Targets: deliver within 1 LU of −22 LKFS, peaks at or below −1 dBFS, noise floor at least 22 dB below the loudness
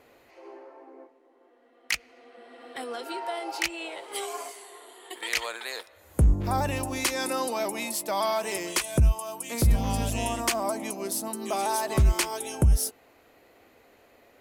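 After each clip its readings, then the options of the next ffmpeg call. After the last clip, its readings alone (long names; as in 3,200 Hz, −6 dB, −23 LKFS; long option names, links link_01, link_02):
integrated loudness −28.0 LKFS; sample peak −12.0 dBFS; target loudness −22.0 LKFS
→ -af "volume=6dB"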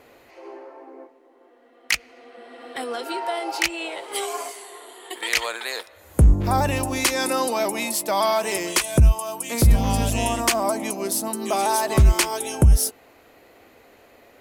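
integrated loudness −22.0 LKFS; sample peak −6.0 dBFS; background noise floor −54 dBFS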